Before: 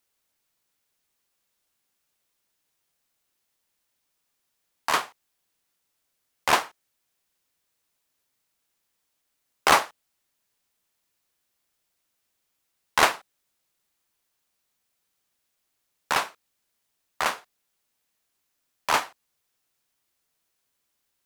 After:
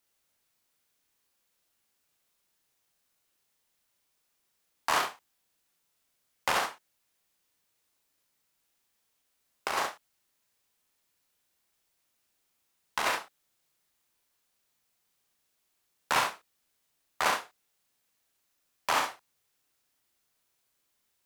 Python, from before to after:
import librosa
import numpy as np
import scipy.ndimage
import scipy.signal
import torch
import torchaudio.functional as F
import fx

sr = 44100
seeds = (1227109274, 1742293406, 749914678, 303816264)

p1 = 10.0 ** (-20.0 / 20.0) * np.tanh(x / 10.0 ** (-20.0 / 20.0))
p2 = x + (p1 * 10.0 ** (-4.0 / 20.0))
p3 = fx.over_compress(p2, sr, threshold_db=-19.0, ratio=-0.5)
p4 = fx.room_early_taps(p3, sr, ms=(37, 67), db=(-4.5, -5.5))
y = p4 * 10.0 ** (-8.0 / 20.0)